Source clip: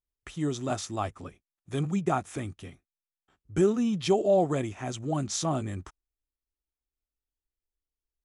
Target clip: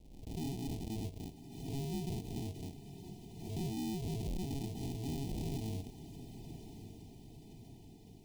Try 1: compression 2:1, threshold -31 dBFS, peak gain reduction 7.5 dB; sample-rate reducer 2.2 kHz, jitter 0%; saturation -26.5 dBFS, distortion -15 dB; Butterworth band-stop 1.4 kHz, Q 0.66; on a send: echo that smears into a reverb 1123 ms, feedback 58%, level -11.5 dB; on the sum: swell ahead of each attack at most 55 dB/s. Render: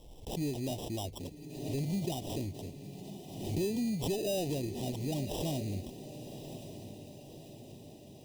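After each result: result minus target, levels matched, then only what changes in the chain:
sample-rate reducer: distortion -19 dB; saturation: distortion -8 dB
change: sample-rate reducer 550 Hz, jitter 0%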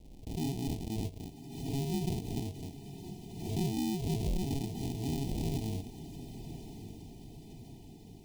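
saturation: distortion -8 dB
change: saturation -35.5 dBFS, distortion -7 dB

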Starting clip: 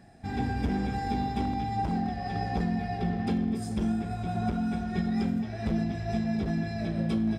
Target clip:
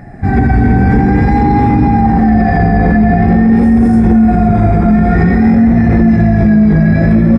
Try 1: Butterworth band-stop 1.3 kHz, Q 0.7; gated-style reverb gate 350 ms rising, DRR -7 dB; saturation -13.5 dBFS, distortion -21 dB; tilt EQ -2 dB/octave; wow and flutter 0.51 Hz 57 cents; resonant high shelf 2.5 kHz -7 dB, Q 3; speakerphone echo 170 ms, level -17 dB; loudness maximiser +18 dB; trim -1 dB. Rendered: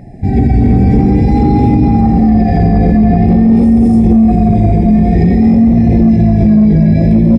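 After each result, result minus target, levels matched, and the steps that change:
saturation: distortion +11 dB; 1 kHz band -5.0 dB
change: saturation -7 dBFS, distortion -32 dB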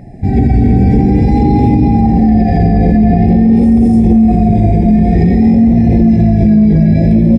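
1 kHz band -5.0 dB
remove: Butterworth band-stop 1.3 kHz, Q 0.7

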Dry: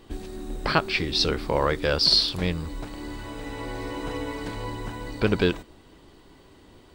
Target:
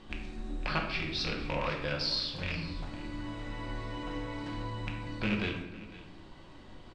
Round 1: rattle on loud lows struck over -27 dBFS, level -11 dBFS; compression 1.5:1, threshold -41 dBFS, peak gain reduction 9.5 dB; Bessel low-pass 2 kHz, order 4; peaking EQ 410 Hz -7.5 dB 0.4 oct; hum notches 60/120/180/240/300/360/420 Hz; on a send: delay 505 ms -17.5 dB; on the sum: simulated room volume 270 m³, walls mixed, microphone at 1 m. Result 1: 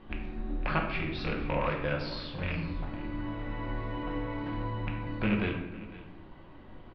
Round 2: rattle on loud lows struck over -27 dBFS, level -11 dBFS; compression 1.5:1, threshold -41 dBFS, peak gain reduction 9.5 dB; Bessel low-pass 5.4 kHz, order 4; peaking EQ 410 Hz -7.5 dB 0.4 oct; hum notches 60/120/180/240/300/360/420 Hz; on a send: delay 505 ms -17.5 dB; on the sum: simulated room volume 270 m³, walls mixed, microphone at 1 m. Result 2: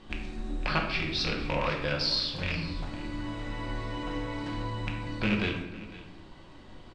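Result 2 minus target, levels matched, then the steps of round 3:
compression: peak gain reduction -3.5 dB
rattle on loud lows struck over -27 dBFS, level -11 dBFS; compression 1.5:1, threshold -52 dBFS, peak gain reduction 13 dB; Bessel low-pass 5.4 kHz, order 4; peaking EQ 410 Hz -7.5 dB 0.4 oct; hum notches 60/120/180/240/300/360/420 Hz; on a send: delay 505 ms -17.5 dB; on the sum: simulated room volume 270 m³, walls mixed, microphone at 1 m

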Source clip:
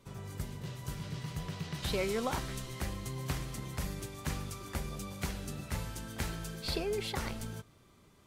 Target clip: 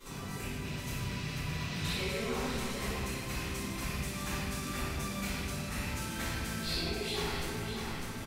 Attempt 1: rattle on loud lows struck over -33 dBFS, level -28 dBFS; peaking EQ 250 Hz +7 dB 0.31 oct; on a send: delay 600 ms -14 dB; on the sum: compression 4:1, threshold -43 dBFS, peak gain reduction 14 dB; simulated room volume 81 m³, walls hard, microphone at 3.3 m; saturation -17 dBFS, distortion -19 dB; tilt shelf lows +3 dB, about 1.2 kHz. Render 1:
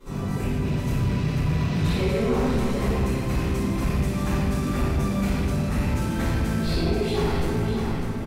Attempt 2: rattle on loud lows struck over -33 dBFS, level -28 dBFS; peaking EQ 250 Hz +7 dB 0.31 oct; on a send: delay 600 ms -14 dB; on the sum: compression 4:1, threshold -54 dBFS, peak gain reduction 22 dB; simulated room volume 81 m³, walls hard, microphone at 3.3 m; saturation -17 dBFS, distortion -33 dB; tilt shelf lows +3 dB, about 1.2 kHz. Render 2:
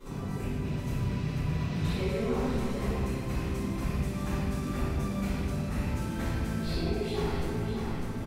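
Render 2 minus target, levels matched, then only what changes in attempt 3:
1 kHz band -2.5 dB
change: tilt shelf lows -4.5 dB, about 1.2 kHz

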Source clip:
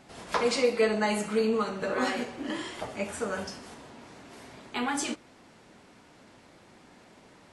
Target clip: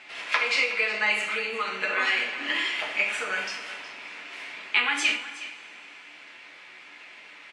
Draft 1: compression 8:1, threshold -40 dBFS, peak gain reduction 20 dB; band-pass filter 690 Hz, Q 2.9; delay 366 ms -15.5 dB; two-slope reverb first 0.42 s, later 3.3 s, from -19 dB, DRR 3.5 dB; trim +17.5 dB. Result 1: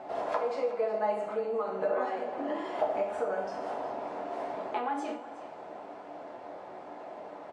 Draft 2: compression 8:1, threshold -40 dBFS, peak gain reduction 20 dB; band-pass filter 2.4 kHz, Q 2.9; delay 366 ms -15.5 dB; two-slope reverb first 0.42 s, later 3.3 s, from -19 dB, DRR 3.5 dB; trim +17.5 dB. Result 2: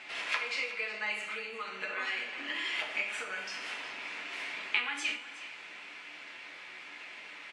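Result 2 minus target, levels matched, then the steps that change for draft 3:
compression: peak gain reduction +10.5 dB
change: compression 8:1, threshold -28 dBFS, peak gain reduction 9.5 dB

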